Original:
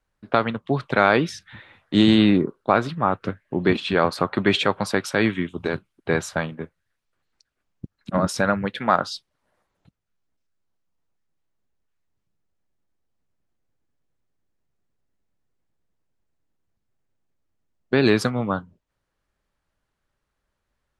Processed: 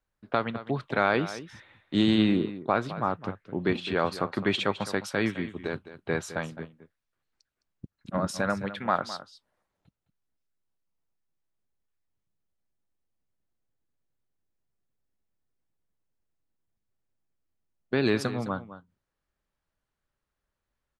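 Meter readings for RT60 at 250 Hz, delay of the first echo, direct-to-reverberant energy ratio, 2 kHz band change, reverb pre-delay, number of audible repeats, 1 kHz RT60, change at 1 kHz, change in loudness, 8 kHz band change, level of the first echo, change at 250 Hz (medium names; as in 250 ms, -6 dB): no reverb, 211 ms, no reverb, -7.0 dB, no reverb, 1, no reverb, -7.0 dB, -7.0 dB, -7.0 dB, -14.0 dB, -6.5 dB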